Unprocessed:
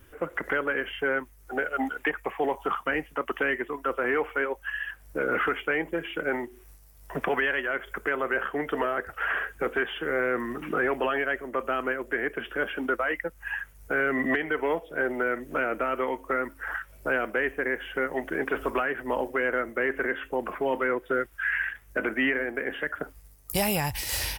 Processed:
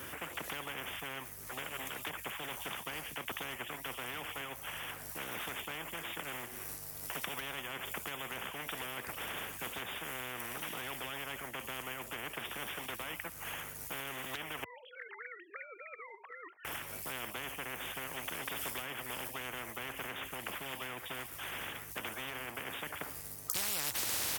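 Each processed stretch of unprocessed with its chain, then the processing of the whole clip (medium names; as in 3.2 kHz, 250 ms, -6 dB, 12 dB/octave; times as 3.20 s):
14.64–16.65 s: formants replaced by sine waves + differentiator
whole clip: high-pass 100 Hz 24 dB/octave; spectrum-flattening compressor 10:1; trim -1 dB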